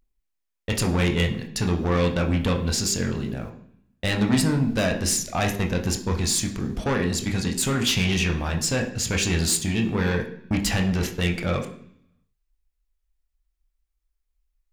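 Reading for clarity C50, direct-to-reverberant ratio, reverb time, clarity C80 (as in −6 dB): 10.0 dB, 1.5 dB, 0.65 s, 13.0 dB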